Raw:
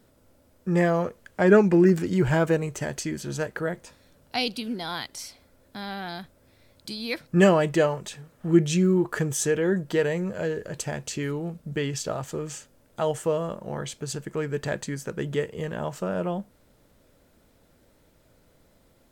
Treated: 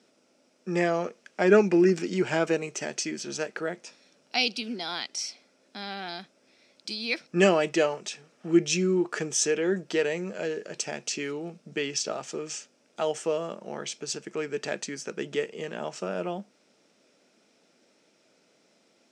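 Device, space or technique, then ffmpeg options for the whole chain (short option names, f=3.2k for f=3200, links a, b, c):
television speaker: -af "highpass=f=220:w=0.5412,highpass=f=220:w=1.3066,equalizer=f=280:t=q:w=4:g=-4,equalizer=f=530:t=q:w=4:g=-4,equalizer=f=1k:t=q:w=4:g=-6,equalizer=f=1.7k:t=q:w=4:g=-3,equalizer=f=2.5k:t=q:w=4:g=6,equalizer=f=5.5k:t=q:w=4:g=9,lowpass=f=8.2k:w=0.5412,lowpass=f=8.2k:w=1.3066"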